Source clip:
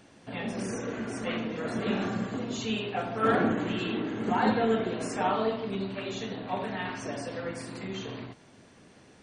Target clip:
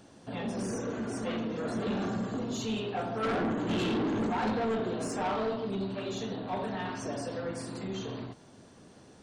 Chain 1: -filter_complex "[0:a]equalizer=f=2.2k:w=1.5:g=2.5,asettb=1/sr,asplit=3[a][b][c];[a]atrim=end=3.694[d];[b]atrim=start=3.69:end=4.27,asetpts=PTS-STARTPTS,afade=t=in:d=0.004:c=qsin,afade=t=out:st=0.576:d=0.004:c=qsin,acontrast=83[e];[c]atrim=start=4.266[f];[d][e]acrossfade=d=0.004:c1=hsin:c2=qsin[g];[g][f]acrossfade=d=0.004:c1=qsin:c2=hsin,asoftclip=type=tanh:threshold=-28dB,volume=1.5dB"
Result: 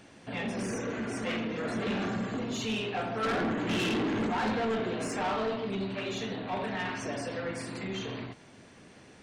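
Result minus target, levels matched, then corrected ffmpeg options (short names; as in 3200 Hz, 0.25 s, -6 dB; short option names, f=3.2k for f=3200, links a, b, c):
2000 Hz band +4.5 dB
-filter_complex "[0:a]equalizer=f=2.2k:w=1.5:g=-8,asettb=1/sr,asplit=3[a][b][c];[a]atrim=end=3.694[d];[b]atrim=start=3.69:end=4.27,asetpts=PTS-STARTPTS,afade=t=in:d=0.004:c=qsin,afade=t=out:st=0.576:d=0.004:c=qsin,acontrast=83[e];[c]atrim=start=4.266[f];[d][e]acrossfade=d=0.004:c1=hsin:c2=qsin[g];[g][f]acrossfade=d=0.004:c1=qsin:c2=hsin,asoftclip=type=tanh:threshold=-28dB,volume=1.5dB"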